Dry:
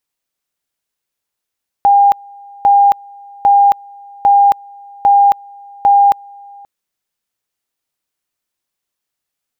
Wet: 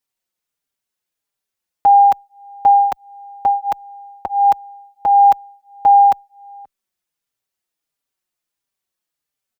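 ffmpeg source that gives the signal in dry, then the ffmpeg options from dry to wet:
-f lavfi -i "aevalsrc='pow(10,(-5-28*gte(mod(t,0.8),0.27))/20)*sin(2*PI*805*t)':d=4.8:s=44100"
-filter_complex "[0:a]asplit=2[s0][s1];[s1]adelay=4.6,afreqshift=-1.5[s2];[s0][s2]amix=inputs=2:normalize=1"

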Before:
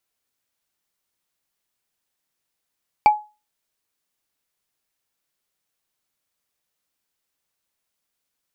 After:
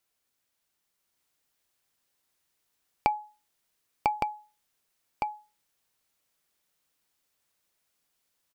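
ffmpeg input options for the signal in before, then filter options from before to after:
-f lavfi -i "aevalsrc='0.501*pow(10,-3*t/0.29)*sin(2*PI*844*t)+0.141*pow(10,-3*t/0.086)*sin(2*PI*2326.9*t)+0.0398*pow(10,-3*t/0.038)*sin(2*PI*4561*t)+0.0112*pow(10,-3*t/0.021)*sin(2*PI*7539.5*t)+0.00316*pow(10,-3*t/0.013)*sin(2*PI*11259*t)':d=0.45:s=44100"
-filter_complex "[0:a]asplit=2[s0][s1];[s1]aecho=0:1:998:0.562[s2];[s0][s2]amix=inputs=2:normalize=0,acompressor=threshold=0.0708:ratio=6,asplit=2[s3][s4];[s4]aecho=0:1:1163:0.596[s5];[s3][s5]amix=inputs=2:normalize=0"

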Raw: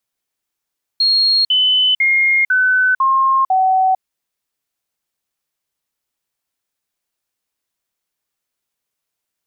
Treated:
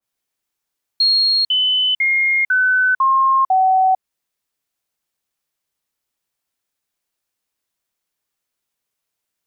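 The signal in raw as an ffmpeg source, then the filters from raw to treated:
-f lavfi -i "aevalsrc='0.299*clip(min(mod(t,0.5),0.45-mod(t,0.5))/0.005,0,1)*sin(2*PI*4270*pow(2,-floor(t/0.5)/2)*mod(t,0.5))':d=3:s=44100"
-af "adynamicequalizer=threshold=0.0562:dfrequency=1800:dqfactor=0.7:tfrequency=1800:tqfactor=0.7:attack=5:release=100:ratio=0.375:range=2:mode=cutabove:tftype=highshelf"

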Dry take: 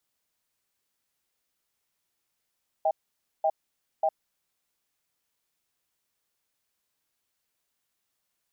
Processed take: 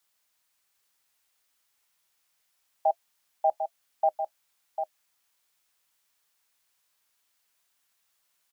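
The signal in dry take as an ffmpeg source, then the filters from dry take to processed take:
-f lavfi -i "aevalsrc='0.0668*(sin(2*PI*636*t)+sin(2*PI*793*t))*clip(min(mod(t,0.59),0.06-mod(t,0.59))/0.005,0,1)':d=1.64:s=44100"
-filter_complex "[0:a]acrossover=split=560|570[s0][s1][s2];[s0]flanger=delay=8.9:depth=6.6:regen=-34:speed=1:shape=triangular[s3];[s2]acontrast=39[s4];[s3][s1][s4]amix=inputs=3:normalize=0,aecho=1:1:748:0.422"

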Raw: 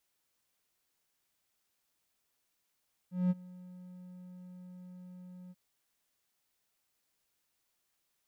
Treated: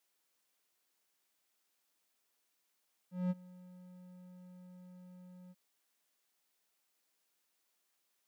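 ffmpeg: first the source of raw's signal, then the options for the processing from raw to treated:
-f lavfi -i "aevalsrc='0.0794*(1-4*abs(mod(181*t+0.25,1)-0.5))':d=2.436:s=44100,afade=t=in:d=0.194,afade=t=out:st=0.194:d=0.032:silence=0.0708,afade=t=out:st=2.4:d=0.036"
-af "highpass=220"

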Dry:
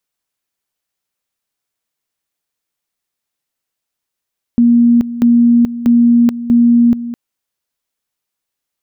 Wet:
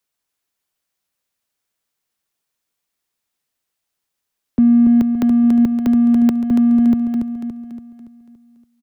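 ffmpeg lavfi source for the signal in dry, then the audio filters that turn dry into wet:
-f lavfi -i "aevalsrc='pow(10,(-5.5-14*gte(mod(t,0.64),0.43))/20)*sin(2*PI*237*t)':d=2.56:s=44100"
-filter_complex "[0:a]acrossover=split=130|190|330[s0][s1][s2][s3];[s1]asoftclip=type=tanh:threshold=0.0251[s4];[s0][s4][s2][s3]amix=inputs=4:normalize=0,aecho=1:1:284|568|852|1136|1420|1704:0.501|0.236|0.111|0.052|0.0245|0.0115"

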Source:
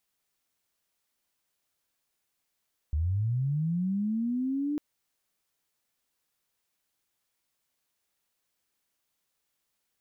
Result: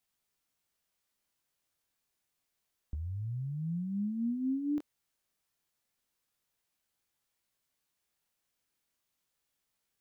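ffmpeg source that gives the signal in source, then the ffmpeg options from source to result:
-f lavfi -i "aevalsrc='pow(10,(-24.5-2.5*t/1.85)/20)*sin(2*PI*(71*t+229*t*t/(2*1.85)))':d=1.85:s=44100"
-filter_complex "[0:a]acrossover=split=240[s0][s1];[s0]acompressor=threshold=0.0141:ratio=6[s2];[s1]flanger=delay=17:depth=7.3:speed=0.3[s3];[s2][s3]amix=inputs=2:normalize=0"

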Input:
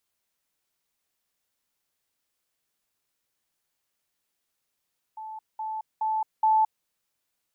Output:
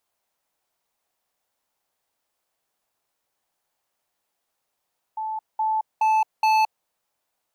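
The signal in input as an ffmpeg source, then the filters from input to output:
-f lavfi -i "aevalsrc='pow(10,(-35.5+6*floor(t/0.42))/20)*sin(2*PI*873*t)*clip(min(mod(t,0.42),0.22-mod(t,0.42))/0.005,0,1)':d=1.68:s=44100"
-af "equalizer=f=760:t=o:w=1.4:g=10.5,asoftclip=type=hard:threshold=0.133"

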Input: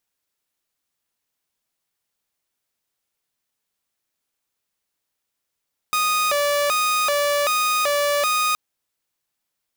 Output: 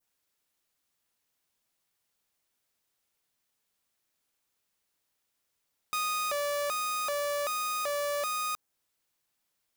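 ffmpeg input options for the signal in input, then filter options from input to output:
-f lavfi -i "aevalsrc='0.168*(2*mod((909.5*t+330.5/1.3*(0.5-abs(mod(1.3*t,1)-0.5))),1)-1)':d=2.62:s=44100"
-af "alimiter=level_in=1.19:limit=0.0631:level=0:latency=1:release=21,volume=0.841,adynamicequalizer=threshold=0.00631:dfrequency=3000:dqfactor=0.86:tfrequency=3000:tqfactor=0.86:attack=5:release=100:ratio=0.375:range=2.5:mode=cutabove:tftype=bell"

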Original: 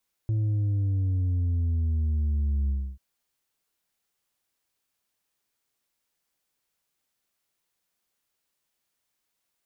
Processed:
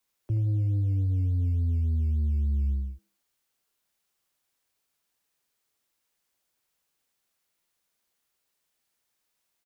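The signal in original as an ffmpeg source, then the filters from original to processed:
-f lavfi -i "aevalsrc='0.0708*clip((2.69-t)/0.29,0,1)*tanh(1.58*sin(2*PI*110*2.69/log(65/110)*(exp(log(65/110)*t/2.69)-1)))/tanh(1.58)':d=2.69:s=44100"
-filter_complex "[0:a]acrossover=split=110|200|230[s0][s1][s2][s3];[s2]acrusher=samples=14:mix=1:aa=0.000001:lfo=1:lforange=8.4:lforate=3.5[s4];[s3]aecho=1:1:79|158|237|316:0.531|0.186|0.065|0.0228[s5];[s0][s1][s4][s5]amix=inputs=4:normalize=0"

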